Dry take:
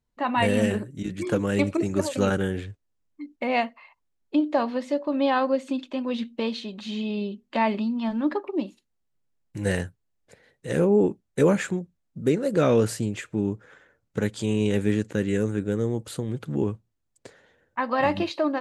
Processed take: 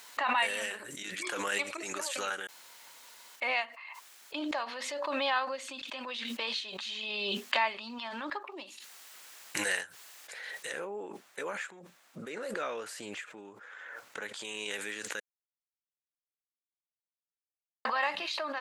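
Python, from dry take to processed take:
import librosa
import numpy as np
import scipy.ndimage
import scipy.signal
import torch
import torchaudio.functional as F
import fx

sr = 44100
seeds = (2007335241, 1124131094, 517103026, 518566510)

y = fx.high_shelf(x, sr, hz=2600.0, db=-10.5, at=(10.72, 14.45))
y = fx.edit(y, sr, fx.room_tone_fill(start_s=2.47, length_s=0.89),
    fx.silence(start_s=15.2, length_s=2.65), tone=tone)
y = fx.rider(y, sr, range_db=3, speed_s=2.0)
y = scipy.signal.sosfilt(scipy.signal.butter(2, 1200.0, 'highpass', fs=sr, output='sos'), y)
y = fx.pre_swell(y, sr, db_per_s=21.0)
y = y * 10.0 ** (-1.5 / 20.0)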